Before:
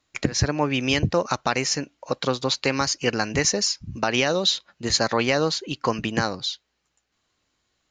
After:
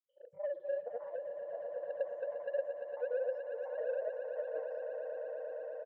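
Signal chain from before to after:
peak hold with a decay on every bin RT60 0.32 s
noise reduction from a noise print of the clip's start 28 dB
flat-topped band-pass 400 Hz, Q 6
comb filter 2.7 ms, depth 48%
downward compressor 8 to 1, threshold −33 dBFS, peak gain reduction 11.5 dB
soft clipping −31.5 dBFS, distortion −17 dB
granular cloud, pitch spread up and down by 0 semitones
on a send: echo that builds up and dies away 157 ms, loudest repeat 8, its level −11 dB
on the sum: wrong playback speed 33 rpm record played at 45 rpm
level +3.5 dB

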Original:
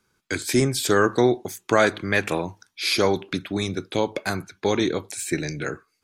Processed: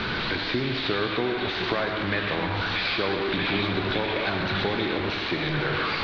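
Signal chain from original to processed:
linear delta modulator 32 kbit/s, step −21 dBFS
downward compressor, threshold −23 dBFS, peak gain reduction 10 dB
elliptic low-pass filter 4,100 Hz, stop band 70 dB
echo through a band-pass that steps 633 ms, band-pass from 2,700 Hz, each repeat −0.7 octaves, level −2 dB
convolution reverb RT60 1.3 s, pre-delay 76 ms, DRR 4 dB

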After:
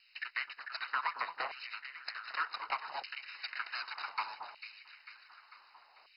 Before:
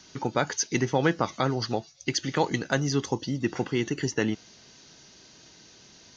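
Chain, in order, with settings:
mu-law and A-law mismatch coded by A
Butterworth high-pass 460 Hz 72 dB per octave
downward compressor 5 to 1, threshold −36 dBFS, peak gain reduction 14 dB
high-frequency loss of the air 140 metres
full-wave rectification
on a send: delay that swaps between a low-pass and a high-pass 223 ms, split 1,100 Hz, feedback 75%, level −7.5 dB
on the sum: auto-filter high-pass saw down 0.66 Hz 720–2,800 Hz
level +5 dB
MP2 32 kbit/s 48,000 Hz

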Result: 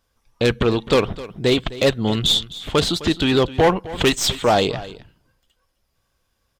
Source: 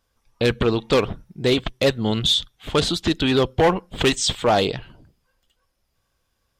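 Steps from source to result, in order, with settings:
stylus tracing distortion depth 0.023 ms
single-tap delay 259 ms −17 dB
level +1.5 dB

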